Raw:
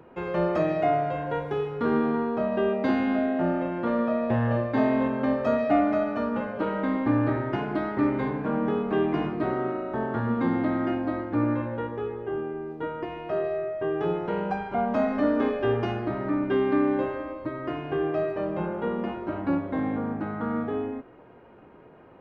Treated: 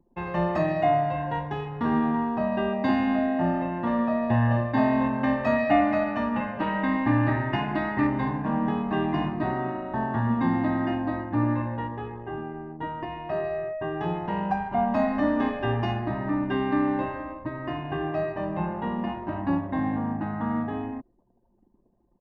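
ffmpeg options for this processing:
-filter_complex "[0:a]asettb=1/sr,asplit=3[a][b][c];[a]atrim=end=5.234[d];[b]atrim=start=5.23:end=8.07,asetpts=PTS-STARTPTS,afade=t=in:d=0.004:c=qsin,afade=t=out:st=2.836:d=0.004:c=qsin,equalizer=f=2.3k:t=o:w=1:g=6.5[e];[c]atrim=start=8.066[f];[d][e]acrossfade=d=0.004:c1=hsin:c2=qsin[g];[g][f]acrossfade=d=0.004:c1=qsin:c2=hsin,anlmdn=0.398,aecho=1:1:1.1:0.7"

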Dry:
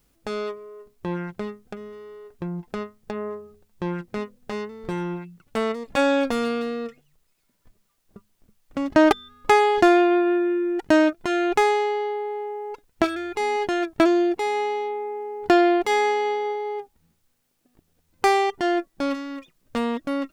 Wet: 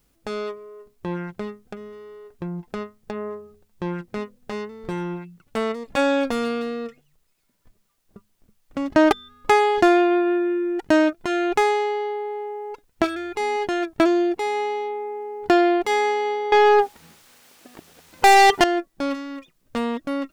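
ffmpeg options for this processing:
-filter_complex "[0:a]asettb=1/sr,asplit=3[a][b][c];[a]atrim=end=16.524[d];[b]atrim=start=16.52:end=18.64,asetpts=PTS-STARTPTS,afade=t=in:d=0.004:c=qsin,afade=t=out:st=2.116:d=0.004:c=qsin,asplit=2[e][f];[f]highpass=f=720:p=1,volume=31dB,asoftclip=type=tanh:threshold=-5.5dB[g];[e][g]amix=inputs=2:normalize=0,lowpass=f=5.4k:p=1,volume=-6dB[h];[c]atrim=start=18.636[i];[d][h]acrossfade=d=0.004:c1=hsin:c2=qsin[j];[j][i]acrossfade=d=0.004:c1=qsin:c2=hsin"

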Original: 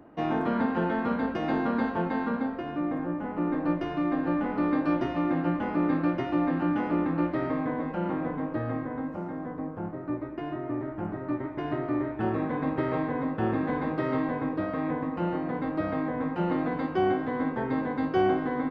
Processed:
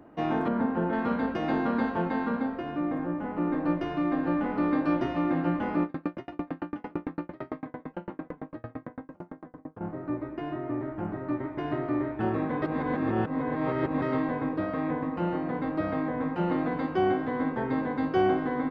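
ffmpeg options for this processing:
-filter_complex "[0:a]asettb=1/sr,asplit=3[a][b][c];[a]atrim=end=0.484[d];[b]atrim=start=0.48:end=0.93,asetpts=PTS-STARTPTS,afade=t=in:d=0.004:c=qsin,afade=t=out:st=0.446:d=0.004:c=qsin,lowpass=f=1.1k:p=1[e];[c]atrim=start=0.926[f];[d][e]acrossfade=d=0.004:c1=hsin:c2=qsin[g];[g][f]acrossfade=d=0.004:c1=qsin:c2=hsin,asettb=1/sr,asplit=3[h][i][j];[h]atrim=end=5.834[k];[i]atrim=start=5.83:end=9.81,asetpts=PTS-STARTPTS,afade=t=in:d=0.004:c=qsin,afade=t=out:st=3.976:d=0.004:c=qsin,aeval=exprs='val(0)*pow(10,-37*if(lt(mod(8.9*n/s,1),2*abs(8.9)/1000),1-mod(8.9*n/s,1)/(2*abs(8.9)/1000),(mod(8.9*n/s,1)-2*abs(8.9)/1000)/(1-2*abs(8.9)/1000))/20)':c=same[l];[j]atrim=start=9.806[m];[k][l]acrossfade=d=0.004:c1=hsin:c2=qsin[n];[n][m]acrossfade=d=0.004:c1=qsin:c2=hsin,asplit=3[o][p][q];[o]atrim=end=12.622[r];[p]atrim=start=12.618:end=14.022,asetpts=PTS-STARTPTS,areverse[s];[q]atrim=start=14.018[t];[r][s]acrossfade=d=0.004:c1=hsin:c2=hsin[u];[u][t]acrossfade=d=0.004:c1=hsin:c2=hsin"

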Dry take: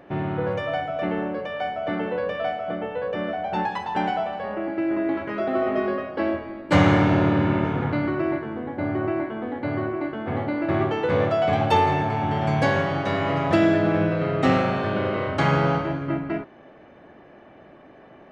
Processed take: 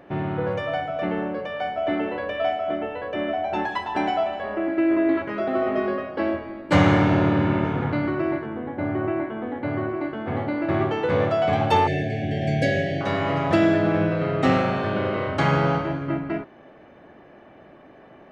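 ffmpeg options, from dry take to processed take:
-filter_complex "[0:a]asettb=1/sr,asplit=3[a][b][c];[a]atrim=end=1.774[d];[b]atrim=start=1.77:end=5.22,asetpts=PTS-STARTPTS,afade=t=in:d=0.004:c=qsin,afade=t=out:st=3.446:d=0.004:c=qsin,aecho=1:1:3:0.65,atrim=end_sample=152145[e];[c]atrim=start=5.216[f];[d][e]acrossfade=d=0.004:c1=hsin:c2=qsin[g];[g][f]acrossfade=d=0.004:c1=qsin:c2=hsin,asettb=1/sr,asplit=3[h][i][j];[h]atrim=end=8.464[k];[i]atrim=start=8.46:end=9.89,asetpts=PTS-STARTPTS,afade=t=in:d=0.004:c=qsin,afade=t=out:st=1.426:d=0.004:c=qsin,equalizer=f=5.1k:t=o:w=0.53:g=-9.5[l];[j]atrim=start=9.886[m];[k][l]acrossfade=d=0.004:c1=hsin:c2=qsin[n];[n][m]acrossfade=d=0.004:c1=qsin:c2=hsin,asettb=1/sr,asplit=3[o][p][q];[o]atrim=end=11.874[r];[p]atrim=start=11.87:end=13.01,asetpts=PTS-STARTPTS,afade=t=in:d=0.004:c=qsin,afade=t=out:st=1.136:d=0.004:c=qsin,asuperstop=centerf=1100:order=20:qfactor=1.3[s];[q]atrim=start=13.006[t];[r][s]acrossfade=d=0.004:c1=hsin:c2=qsin[u];[u][t]acrossfade=d=0.004:c1=qsin:c2=hsin"

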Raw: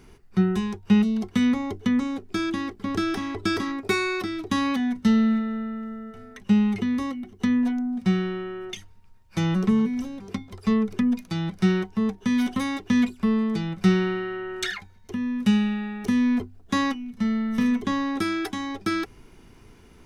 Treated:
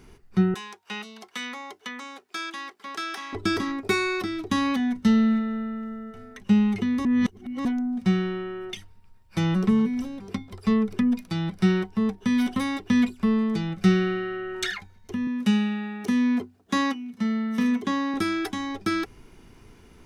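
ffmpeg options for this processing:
-filter_complex "[0:a]asettb=1/sr,asplit=3[a][b][c];[a]atrim=end=0.544[d];[b]atrim=start=0.54:end=3.33,asetpts=PTS-STARTPTS,afade=t=in:d=0.004:c=qsin,afade=t=out:st=2.786:d=0.004:c=qsin,highpass=840[e];[c]atrim=start=3.326[f];[d][e]acrossfade=d=0.004:c1=hsin:c2=qsin[g];[g][f]acrossfade=d=0.004:c1=qsin:c2=hsin,asettb=1/sr,asplit=3[h][i][j];[h]atrim=end=8.354[k];[i]atrim=start=8.35:end=13.15,asetpts=PTS-STARTPTS,afade=t=in:d=0.004:c=qsin,afade=t=out:st=4.796:d=0.004:c=qsin,bandreject=f=6.5k:w=9.9[l];[j]atrim=start=13.146[m];[k][l]acrossfade=d=0.004:c1=hsin:c2=qsin[n];[n][m]acrossfade=d=0.004:c1=qsin:c2=hsin,asettb=1/sr,asplit=3[o][p][q];[o]atrim=end=13.704[r];[p]atrim=start=13.7:end=14.55,asetpts=PTS-STARTPTS,afade=t=in:d=0.004:c=qsin,afade=t=out:st=0.846:d=0.004:c=qsin,asuperstop=centerf=960:order=8:qfactor=5.8[s];[q]atrim=start=14.546[t];[r][s]acrossfade=d=0.004:c1=hsin:c2=qsin[u];[u][t]acrossfade=d=0.004:c1=qsin:c2=hsin,asettb=1/sr,asplit=3[v][w][x];[v]atrim=end=15.274[y];[w]atrim=start=15.27:end=18.14,asetpts=PTS-STARTPTS,afade=t=in:d=0.004:c=qsin,afade=t=out:st=2.866:d=0.004:c=qsin,highpass=170[z];[x]atrim=start=18.136[aa];[y][z]acrossfade=d=0.004:c1=hsin:c2=qsin[ab];[ab][aa]acrossfade=d=0.004:c1=qsin:c2=hsin,asplit=3[ac][ad][ae];[ac]atrim=end=7.052[af];[ad]atrim=start=7.048:end=7.652,asetpts=PTS-STARTPTS,areverse[ag];[ae]atrim=start=7.648[ah];[af][ag]acrossfade=d=0.004:c1=hsin:c2=hsin[ai];[ai][ah]acrossfade=d=0.004:c1=hsin:c2=hsin"

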